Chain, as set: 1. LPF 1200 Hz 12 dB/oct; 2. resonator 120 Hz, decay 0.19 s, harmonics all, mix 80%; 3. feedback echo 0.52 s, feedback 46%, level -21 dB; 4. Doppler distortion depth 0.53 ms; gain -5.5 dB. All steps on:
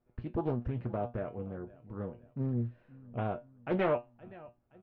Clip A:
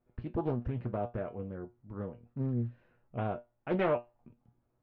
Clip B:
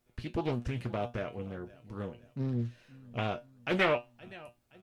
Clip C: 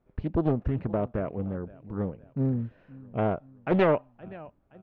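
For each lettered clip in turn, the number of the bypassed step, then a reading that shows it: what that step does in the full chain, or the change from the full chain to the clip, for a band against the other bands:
3, momentary loudness spread change -8 LU; 1, 2 kHz band +9.5 dB; 2, 250 Hz band +1.5 dB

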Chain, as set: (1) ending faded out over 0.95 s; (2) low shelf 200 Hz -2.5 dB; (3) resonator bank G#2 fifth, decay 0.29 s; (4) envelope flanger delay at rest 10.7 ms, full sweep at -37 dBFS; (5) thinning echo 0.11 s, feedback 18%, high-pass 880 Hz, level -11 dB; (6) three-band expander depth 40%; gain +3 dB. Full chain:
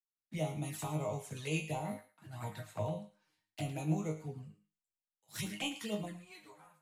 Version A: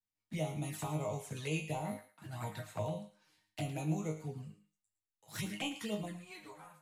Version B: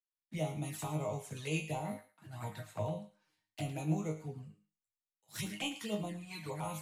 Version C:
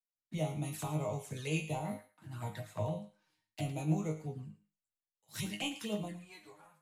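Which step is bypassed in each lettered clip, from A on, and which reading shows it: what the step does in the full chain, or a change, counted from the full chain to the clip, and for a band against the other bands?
6, crest factor change -1.5 dB; 1, momentary loudness spread change -4 LU; 2, momentary loudness spread change -1 LU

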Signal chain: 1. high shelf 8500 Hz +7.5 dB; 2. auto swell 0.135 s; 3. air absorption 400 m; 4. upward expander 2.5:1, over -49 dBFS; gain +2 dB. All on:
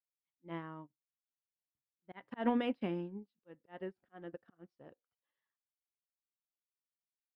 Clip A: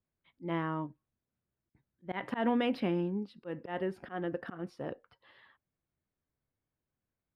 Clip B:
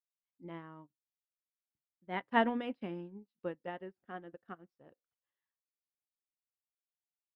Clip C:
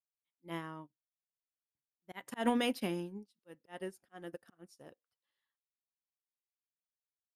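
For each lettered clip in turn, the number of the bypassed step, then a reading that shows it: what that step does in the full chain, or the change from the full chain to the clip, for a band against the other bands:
4, crest factor change -5.0 dB; 2, crest factor change +2.0 dB; 3, 2 kHz band +4.0 dB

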